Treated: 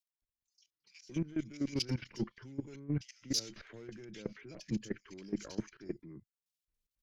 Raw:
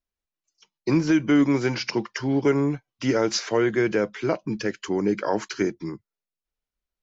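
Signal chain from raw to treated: single-diode clipper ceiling -17 dBFS; reverse; compression 10:1, threshold -30 dBFS, peak gain reduction 14 dB; reverse; peaking EQ 840 Hz -15 dB 2 oct; level held to a coarse grid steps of 18 dB; bands offset in time highs, lows 220 ms, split 2.3 kHz; trim +5 dB

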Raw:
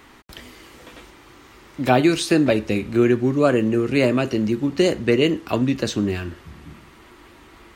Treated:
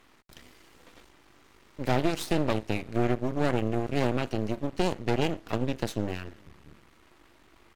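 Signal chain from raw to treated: echo from a far wall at 66 m, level -26 dB; Chebyshev shaper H 6 -18 dB, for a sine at -3 dBFS; half-wave rectifier; trim -8 dB

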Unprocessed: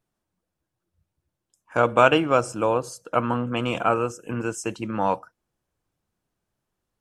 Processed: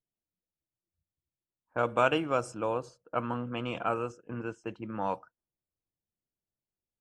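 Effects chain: gate -38 dBFS, range -7 dB; level-controlled noise filter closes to 710 Hz, open at -17 dBFS; trim -9 dB

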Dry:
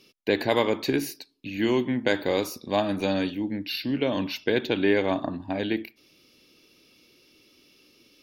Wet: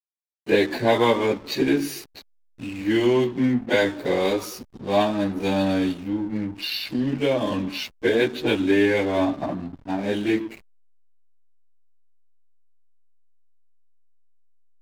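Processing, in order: plain phase-vocoder stretch 1.8×; hysteresis with a dead band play -38 dBFS; trim +6 dB

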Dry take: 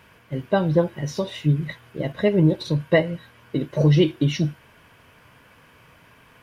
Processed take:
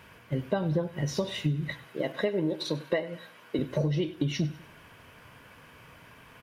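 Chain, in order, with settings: 1.84–3.59 s: high-pass 290 Hz 12 dB/octave; compression 12:1, threshold -24 dBFS, peak gain reduction 13 dB; on a send: feedback delay 98 ms, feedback 42%, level -18 dB

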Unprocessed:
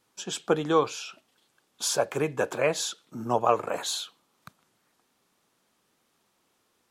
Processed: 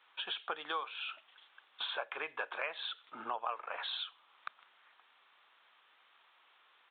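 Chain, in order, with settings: Butterworth band-pass 2.3 kHz, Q 0.54; resampled via 8 kHz; compression 4:1, threshold -48 dBFS, peak gain reduction 21.5 dB; trim +9.5 dB

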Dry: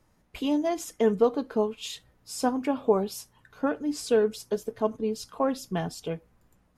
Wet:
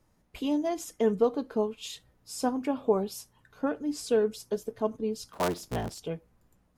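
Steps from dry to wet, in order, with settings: 5.33–5.99 s: cycle switcher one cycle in 3, inverted; peaking EQ 1.8 kHz -2.5 dB 2.2 oct; trim -2 dB

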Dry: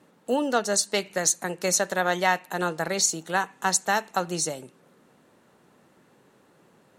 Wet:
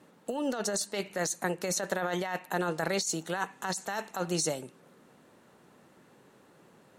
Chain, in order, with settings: 0.67–2.71 s: peaking EQ 5.9 kHz -3.5 dB 2 oct; compressor with a negative ratio -28 dBFS, ratio -1; trim -3 dB

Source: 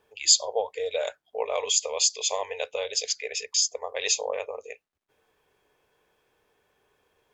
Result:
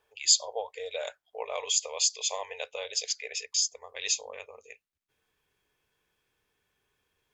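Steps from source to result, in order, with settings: peaking EQ 220 Hz -11.5 dB 2 oct, from 3.48 s 600 Hz; trim -3 dB

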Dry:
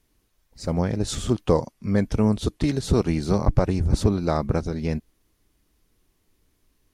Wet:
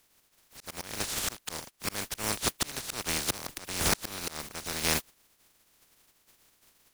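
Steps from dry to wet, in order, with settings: spectral contrast reduction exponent 0.2; slow attack 518 ms; 3.18–3.91 s: three bands expanded up and down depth 40%

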